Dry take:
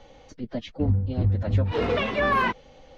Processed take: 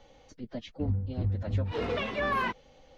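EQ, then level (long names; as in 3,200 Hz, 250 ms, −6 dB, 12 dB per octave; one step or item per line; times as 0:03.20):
high-shelf EQ 4,700 Hz +4.5 dB
−7.0 dB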